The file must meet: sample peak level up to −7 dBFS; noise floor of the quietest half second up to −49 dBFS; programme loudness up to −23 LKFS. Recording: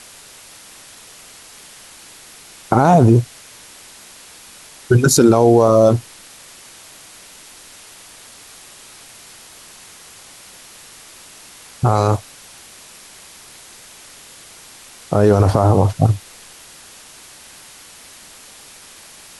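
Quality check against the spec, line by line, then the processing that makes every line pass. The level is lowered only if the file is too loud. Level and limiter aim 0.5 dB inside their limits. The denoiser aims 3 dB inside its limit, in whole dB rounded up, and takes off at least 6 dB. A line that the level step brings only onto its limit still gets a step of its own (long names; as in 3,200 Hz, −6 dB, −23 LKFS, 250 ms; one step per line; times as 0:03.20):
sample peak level −1.5 dBFS: out of spec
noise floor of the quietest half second −42 dBFS: out of spec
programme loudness −14.5 LKFS: out of spec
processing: level −9 dB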